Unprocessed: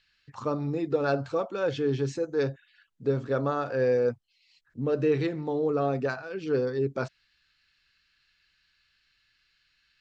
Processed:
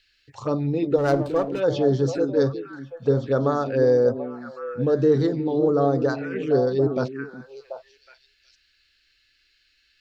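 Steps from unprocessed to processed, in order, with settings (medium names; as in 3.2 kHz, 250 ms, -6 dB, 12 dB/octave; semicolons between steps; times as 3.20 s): repeats whose band climbs or falls 368 ms, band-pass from 250 Hz, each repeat 1.4 oct, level -3.5 dB; touch-sensitive phaser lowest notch 160 Hz, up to 2.5 kHz, full sweep at -23.5 dBFS; 0.98–1.60 s: sliding maximum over 5 samples; trim +6.5 dB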